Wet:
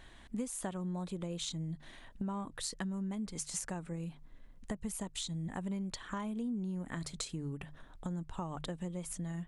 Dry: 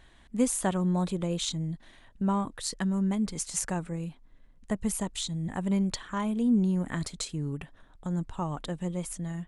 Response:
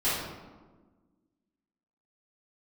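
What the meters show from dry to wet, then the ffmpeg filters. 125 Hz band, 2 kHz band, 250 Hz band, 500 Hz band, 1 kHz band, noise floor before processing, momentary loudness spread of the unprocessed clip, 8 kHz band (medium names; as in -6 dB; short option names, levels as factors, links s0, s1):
-8.5 dB, -7.0 dB, -10.0 dB, -9.5 dB, -9.5 dB, -56 dBFS, 10 LU, -7.5 dB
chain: -af "bandreject=f=50:t=h:w=6,bandreject=f=100:t=h:w=6,bandreject=f=150:t=h:w=6,acompressor=threshold=0.0112:ratio=5,volume=1.26"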